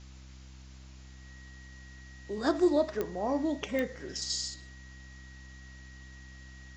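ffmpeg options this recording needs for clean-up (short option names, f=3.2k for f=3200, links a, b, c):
-af "adeclick=t=4,bandreject=f=64.9:t=h:w=4,bandreject=f=129.8:t=h:w=4,bandreject=f=194.7:t=h:w=4,bandreject=f=259.6:t=h:w=4,bandreject=f=324.5:t=h:w=4,bandreject=f=1.9k:w=30,afftdn=nr=28:nf=-50"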